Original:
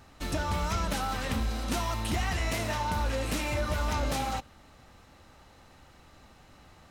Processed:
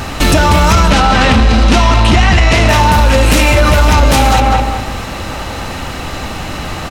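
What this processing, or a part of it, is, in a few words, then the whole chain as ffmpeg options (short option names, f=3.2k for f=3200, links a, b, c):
mastering chain: -filter_complex "[0:a]asettb=1/sr,asplit=3[a][b][c];[a]atrim=end=0.904[d];[b]atrim=start=0.9:end=2.69,asetpts=PTS-STARTPTS,afade=t=in:d=0.004:c=qsin,afade=t=out:st=1.786:d=0.004:c=qsin,lowpass=5.6k[e];[c]atrim=start=2.686[f];[d][e]acrossfade=d=0.004:c1=hsin:c2=qsin[g];[g][f]acrossfade=d=0.004:c1=qsin:c2=hsin,equalizer=f=2.7k:t=o:w=0.39:g=3.5,asplit=2[h][i];[i]adelay=200,lowpass=f=2.2k:p=1,volume=-8dB,asplit=2[j][k];[k]adelay=200,lowpass=f=2.2k:p=1,volume=0.3,asplit=2[l][m];[m]adelay=200,lowpass=f=2.2k:p=1,volume=0.3,asplit=2[n][o];[o]adelay=200,lowpass=f=2.2k:p=1,volume=0.3[p];[h][j][l][n][p]amix=inputs=5:normalize=0,acompressor=threshold=-32dB:ratio=2.5,asoftclip=type=tanh:threshold=-25.5dB,alimiter=level_in=34dB:limit=-1dB:release=50:level=0:latency=1,volume=-1dB"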